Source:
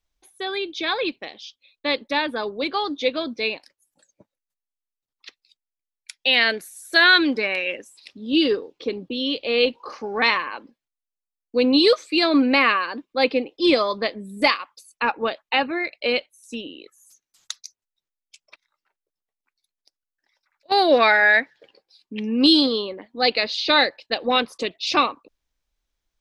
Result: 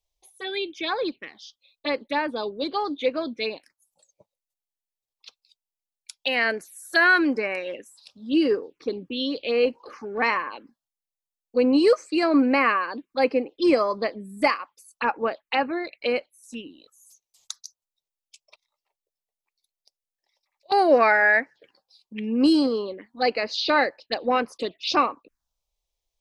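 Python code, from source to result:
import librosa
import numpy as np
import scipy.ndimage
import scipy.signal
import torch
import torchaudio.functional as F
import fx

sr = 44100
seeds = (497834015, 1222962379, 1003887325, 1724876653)

y = fx.env_phaser(x, sr, low_hz=250.0, high_hz=3600.0, full_db=-19.5)
y = fx.low_shelf(y, sr, hz=160.0, db=-5.0)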